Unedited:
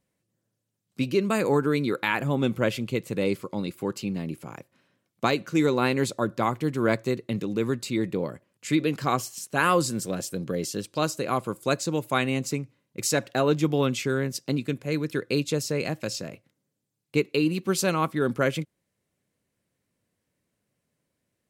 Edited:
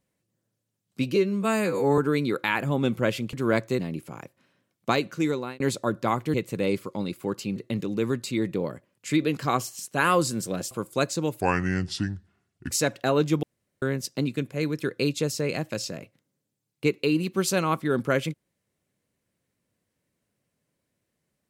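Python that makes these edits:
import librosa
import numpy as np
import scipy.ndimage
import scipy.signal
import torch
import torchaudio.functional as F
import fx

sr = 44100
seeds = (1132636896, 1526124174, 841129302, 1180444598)

y = fx.edit(x, sr, fx.stretch_span(start_s=1.16, length_s=0.41, factor=2.0),
    fx.swap(start_s=2.92, length_s=1.22, other_s=6.69, other_length_s=0.46),
    fx.fade_out_span(start_s=5.26, length_s=0.69, curve='qsin'),
    fx.cut(start_s=10.3, length_s=1.11),
    fx.speed_span(start_s=12.11, length_s=0.91, speed=0.7),
    fx.room_tone_fill(start_s=13.74, length_s=0.39), tone=tone)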